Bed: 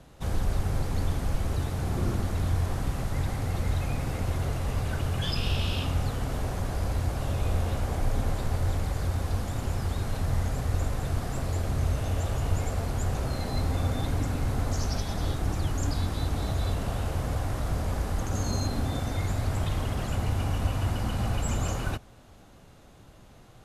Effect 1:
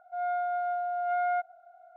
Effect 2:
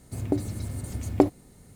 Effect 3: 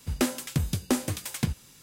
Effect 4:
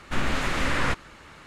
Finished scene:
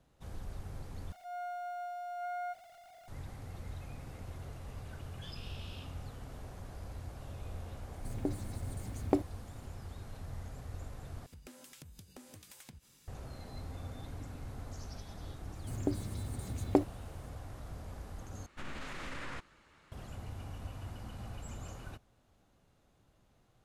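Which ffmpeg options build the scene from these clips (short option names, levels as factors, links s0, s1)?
-filter_complex "[2:a]asplit=2[s0][s1];[0:a]volume=0.15[s2];[1:a]aeval=exprs='val(0)+0.5*0.00794*sgn(val(0))':c=same[s3];[3:a]acompressor=threshold=0.01:ratio=6:attack=3.2:release=140:knee=1:detection=peak[s4];[4:a]alimiter=limit=0.133:level=0:latency=1:release=13[s5];[s2]asplit=4[s6][s7][s8][s9];[s6]atrim=end=1.124[s10];[s3]atrim=end=1.96,asetpts=PTS-STARTPTS,volume=0.266[s11];[s7]atrim=start=3.076:end=11.264[s12];[s4]atrim=end=1.82,asetpts=PTS-STARTPTS,volume=0.299[s13];[s8]atrim=start=13.076:end=18.464[s14];[s5]atrim=end=1.46,asetpts=PTS-STARTPTS,volume=0.158[s15];[s9]atrim=start=19.916[s16];[s0]atrim=end=1.75,asetpts=PTS-STARTPTS,volume=0.335,afade=t=in:d=0.004:c=hsin,afade=t=out:st=1.746:d=0.004:c=hsin,adelay=7930[s17];[s1]atrim=end=1.75,asetpts=PTS-STARTPTS,volume=0.422,afade=t=in:d=0.004:c=hsin,afade=t=out:st=1.746:d=0.004:c=hsin,adelay=15550[s18];[s10][s11]acrossfade=d=0.004:c1=hsin:c2=hsin[s19];[s19][s12]acrossfade=d=0.004:c1=hsin:c2=hsin[s20];[s20][s13]acrossfade=d=0.004:c1=hsin:c2=hsin[s21];[s21][s14]acrossfade=d=0.004:c1=hsin:c2=hsin[s22];[s22][s15]acrossfade=d=0.004:c1=hsin:c2=hsin[s23];[s23][s16]acrossfade=d=0.004:c1=hsin:c2=hsin[s24];[s24][s17][s18]amix=inputs=3:normalize=0"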